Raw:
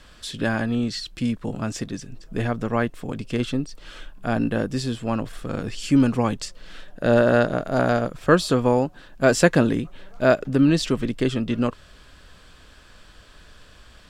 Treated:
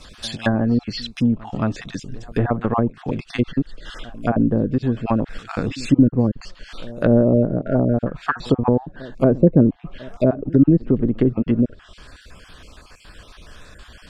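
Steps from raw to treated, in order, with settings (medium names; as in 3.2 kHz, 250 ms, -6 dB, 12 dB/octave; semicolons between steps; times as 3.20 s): random holes in the spectrogram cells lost 29%; low-pass that closes with the level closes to 390 Hz, closed at -18.5 dBFS; pre-echo 222 ms -21 dB; trim +6.5 dB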